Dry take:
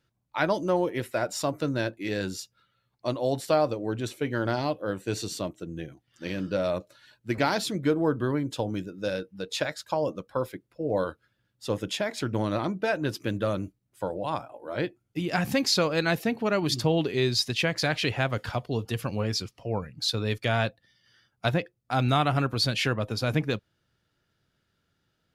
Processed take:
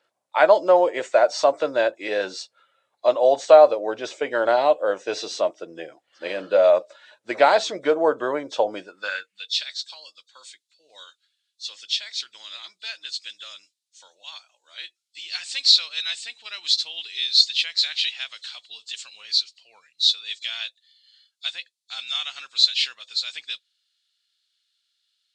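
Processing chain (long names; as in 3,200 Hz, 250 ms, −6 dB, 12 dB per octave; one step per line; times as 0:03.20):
hearing-aid frequency compression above 3,300 Hz 1.5 to 1
high-pass filter sweep 600 Hz → 3,900 Hz, 0:08.77–0:09.54
level +5.5 dB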